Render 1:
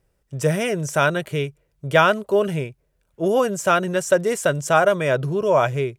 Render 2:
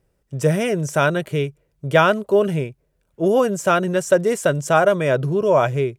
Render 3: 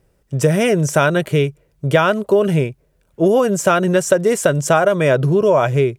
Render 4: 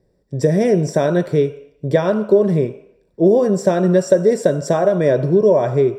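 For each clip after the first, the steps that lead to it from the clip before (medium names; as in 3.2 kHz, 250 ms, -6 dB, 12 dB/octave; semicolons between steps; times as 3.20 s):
peaking EQ 250 Hz +4.5 dB 2.7 oct; trim -1 dB
compression, threshold -17 dBFS, peak gain reduction 8 dB; trim +7 dB
reverberation RT60 0.75 s, pre-delay 3 ms, DRR 9 dB; trim -14 dB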